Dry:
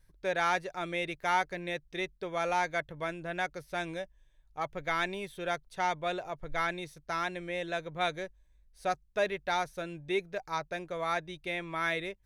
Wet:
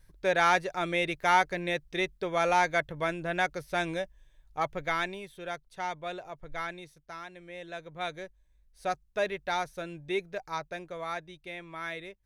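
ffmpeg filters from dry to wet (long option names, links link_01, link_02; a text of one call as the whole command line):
ffmpeg -i in.wav -af "volume=16dB,afade=type=out:start_time=4.59:duration=0.64:silence=0.354813,afade=type=out:start_time=6.57:duration=0.71:silence=0.446684,afade=type=in:start_time=7.28:duration=1.59:silence=0.281838,afade=type=out:start_time=10.39:duration=1.01:silence=0.501187" out.wav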